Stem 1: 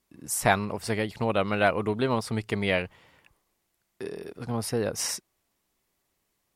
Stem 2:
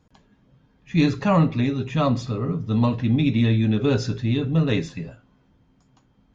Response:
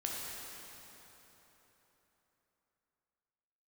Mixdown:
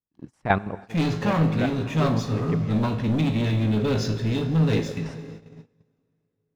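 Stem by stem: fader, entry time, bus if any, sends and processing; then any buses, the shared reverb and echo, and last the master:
+1.0 dB, 0.00 s, send -19.5 dB, LPF 2600 Hz 12 dB/oct; low shelf 450 Hz +7.5 dB; step gate "..x.x.x.x.." 181 bpm -12 dB; auto duck -10 dB, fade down 0.40 s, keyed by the second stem
-6.5 dB, 0.00 s, send -10.5 dB, sample leveller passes 3; resonator 53 Hz, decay 0.37 s, harmonics all, mix 70%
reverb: on, RT60 3.9 s, pre-delay 8 ms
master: gate -39 dBFS, range -21 dB

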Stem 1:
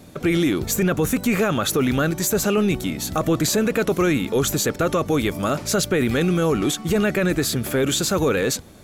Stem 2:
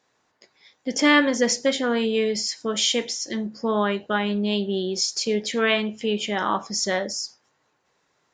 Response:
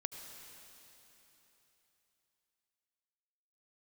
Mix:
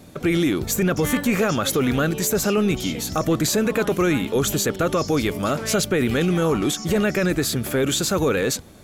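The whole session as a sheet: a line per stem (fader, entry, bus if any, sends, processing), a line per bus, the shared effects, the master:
-0.5 dB, 0.00 s, no send, dry
-12.0 dB, 0.00 s, no send, dry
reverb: off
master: dry

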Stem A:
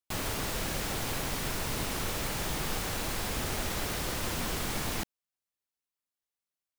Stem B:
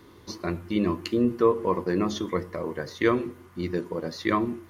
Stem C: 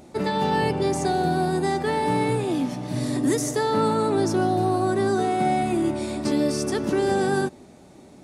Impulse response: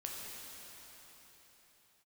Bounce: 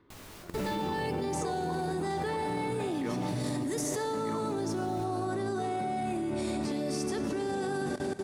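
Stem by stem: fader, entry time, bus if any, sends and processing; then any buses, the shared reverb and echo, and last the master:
+1.5 dB, 0.00 s, no send, chorus 1.6 Hz, delay 16 ms; auto duck -17 dB, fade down 1.55 s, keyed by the second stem
-6.5 dB, 0.00 s, no send, LPF 2700 Hz
-3.5 dB, 0.40 s, send -4 dB, limiter -22.5 dBFS, peak gain reduction 11 dB; AGC gain up to 9 dB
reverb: on, pre-delay 6 ms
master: level quantiser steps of 16 dB

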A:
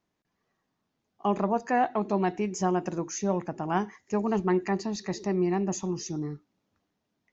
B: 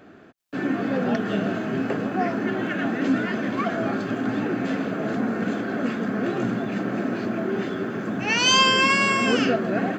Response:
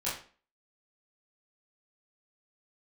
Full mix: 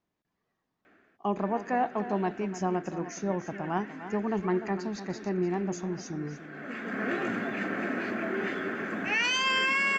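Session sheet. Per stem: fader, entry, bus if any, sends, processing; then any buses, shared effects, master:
-3.0 dB, 0.00 s, no send, echo send -12.5 dB, high shelf 6000 Hz -9 dB
-5.5 dB, 0.85 s, no send, no echo send, ten-band EQ 125 Hz -10 dB, 2000 Hz +11 dB, 4000 Hz -3 dB; limiter -13 dBFS, peak gain reduction 9.5 dB; auto duck -17 dB, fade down 0.65 s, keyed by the first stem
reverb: off
echo: echo 0.297 s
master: dry

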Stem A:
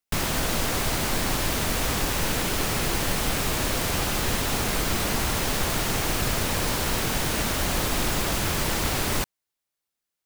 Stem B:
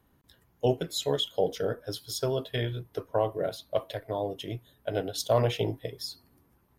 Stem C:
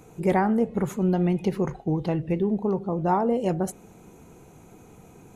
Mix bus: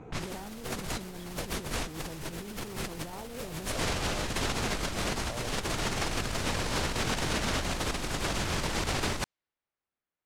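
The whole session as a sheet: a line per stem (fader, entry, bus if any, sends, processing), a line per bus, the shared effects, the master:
-4.5 dB, 0.00 s, no send, dry
-11.0 dB, 0.00 s, no send, dry
-1.0 dB, 0.00 s, no send, limiter -20.5 dBFS, peak gain reduction 9.5 dB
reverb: off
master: low-pass opened by the level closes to 2000 Hz, open at -22 dBFS; negative-ratio compressor -32 dBFS, ratio -0.5

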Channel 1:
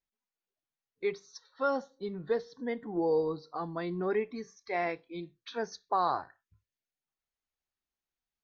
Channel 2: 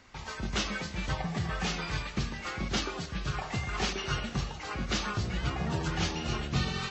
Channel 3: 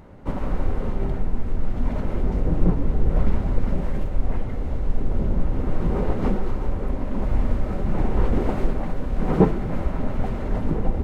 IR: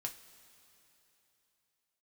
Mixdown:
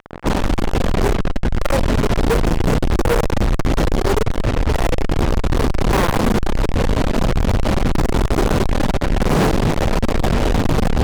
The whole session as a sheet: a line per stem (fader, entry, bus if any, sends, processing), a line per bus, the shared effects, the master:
+2.0 dB, 0.00 s, send -15.5 dB, bell 130 Hz +8.5 dB 0.46 oct; comb 2.1 ms, depth 43%
-7.0 dB, 0.00 s, no send, resonator 350 Hz, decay 0.92 s, mix 40%
-1.0 dB, 0.00 s, send -4.5 dB, dry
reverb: on, pre-delay 3 ms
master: LPF 1200 Hz 12 dB/oct; fuzz box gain 42 dB, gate -36 dBFS

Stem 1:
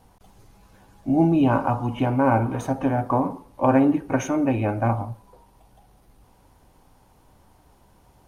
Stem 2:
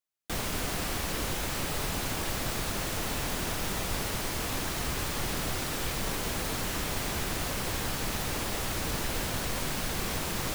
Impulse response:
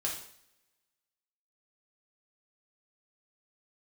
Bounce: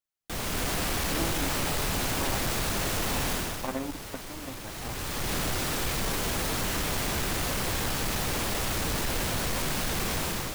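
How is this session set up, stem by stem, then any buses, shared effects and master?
-10.0 dB, 0.00 s, no send, power-law curve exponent 2
3.33 s -2.5 dB -> 3.77 s -14 dB -> 4.63 s -14 dB -> 5.34 s -3 dB, 0.00 s, no send, AGC gain up to 8.5 dB; soft clip -20.5 dBFS, distortion -14 dB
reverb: off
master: dry

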